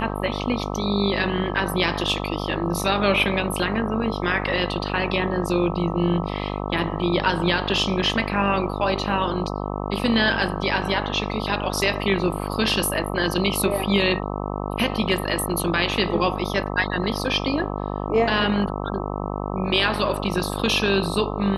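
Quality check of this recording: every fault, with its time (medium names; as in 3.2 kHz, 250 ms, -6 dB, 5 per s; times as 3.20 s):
buzz 50 Hz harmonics 26 -28 dBFS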